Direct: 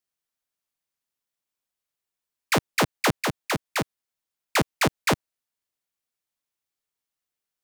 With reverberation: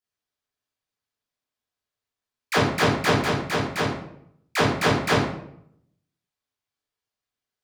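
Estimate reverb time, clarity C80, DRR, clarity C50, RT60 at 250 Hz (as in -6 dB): 0.70 s, 6.0 dB, -9.5 dB, 2.5 dB, 0.85 s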